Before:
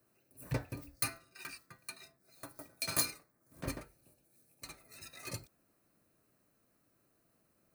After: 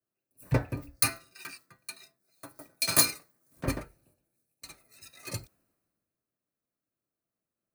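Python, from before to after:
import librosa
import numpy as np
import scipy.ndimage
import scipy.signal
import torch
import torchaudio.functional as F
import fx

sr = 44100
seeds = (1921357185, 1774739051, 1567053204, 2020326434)

y = fx.band_widen(x, sr, depth_pct=70)
y = y * librosa.db_to_amplitude(3.5)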